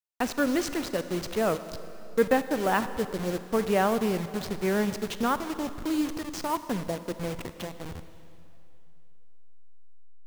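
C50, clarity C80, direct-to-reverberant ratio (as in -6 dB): 12.0 dB, 12.5 dB, 11.5 dB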